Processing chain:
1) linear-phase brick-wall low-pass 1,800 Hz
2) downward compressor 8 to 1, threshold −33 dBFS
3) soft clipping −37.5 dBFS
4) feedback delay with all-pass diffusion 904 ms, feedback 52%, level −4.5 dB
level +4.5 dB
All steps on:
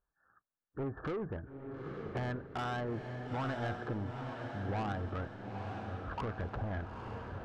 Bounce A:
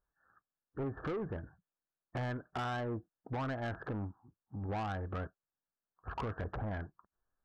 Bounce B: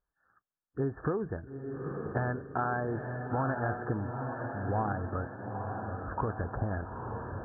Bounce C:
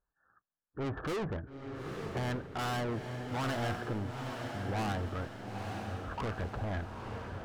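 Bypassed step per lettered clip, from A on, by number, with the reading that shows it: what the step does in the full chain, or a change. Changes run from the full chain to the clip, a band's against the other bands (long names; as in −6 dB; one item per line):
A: 4, echo-to-direct ratio −3.0 dB to none audible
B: 3, distortion level −9 dB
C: 2, average gain reduction 6.5 dB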